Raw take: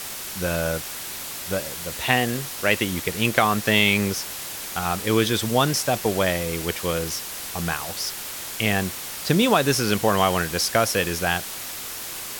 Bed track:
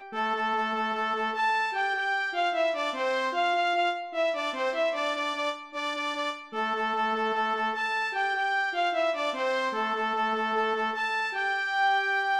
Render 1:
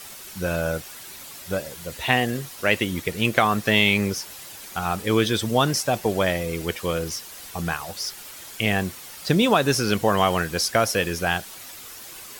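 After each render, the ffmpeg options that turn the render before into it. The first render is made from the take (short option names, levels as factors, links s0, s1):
-af "afftdn=nr=9:nf=-34"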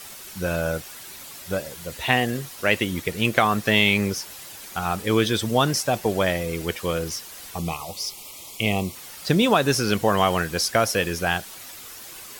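-filter_complex "[0:a]asplit=3[s0][s1][s2];[s0]afade=t=out:st=7.58:d=0.02[s3];[s1]asuperstop=centerf=1600:order=8:qfactor=2,afade=t=in:st=7.58:d=0.02,afade=t=out:st=8.94:d=0.02[s4];[s2]afade=t=in:st=8.94:d=0.02[s5];[s3][s4][s5]amix=inputs=3:normalize=0"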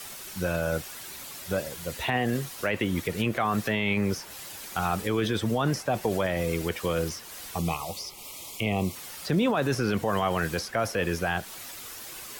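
-filter_complex "[0:a]acrossover=split=170|750|2500[s0][s1][s2][s3];[s3]acompressor=threshold=0.0141:ratio=6[s4];[s0][s1][s2][s4]amix=inputs=4:normalize=0,alimiter=limit=0.15:level=0:latency=1:release=15"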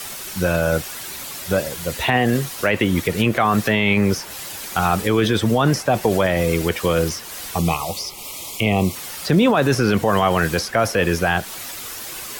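-af "volume=2.82"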